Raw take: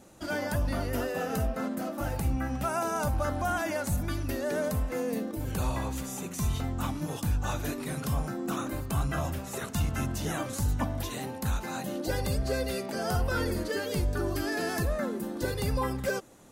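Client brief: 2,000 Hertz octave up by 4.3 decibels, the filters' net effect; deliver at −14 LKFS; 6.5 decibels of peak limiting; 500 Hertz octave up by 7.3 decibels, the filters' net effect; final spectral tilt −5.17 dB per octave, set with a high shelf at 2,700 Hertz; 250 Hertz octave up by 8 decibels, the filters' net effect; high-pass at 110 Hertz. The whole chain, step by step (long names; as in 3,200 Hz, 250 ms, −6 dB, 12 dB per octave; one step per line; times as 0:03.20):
high-pass filter 110 Hz
parametric band 250 Hz +8 dB
parametric band 500 Hz +6.5 dB
parametric band 2,000 Hz +3.5 dB
high-shelf EQ 2,700 Hz +4.5 dB
level +13.5 dB
brickwall limiter −4 dBFS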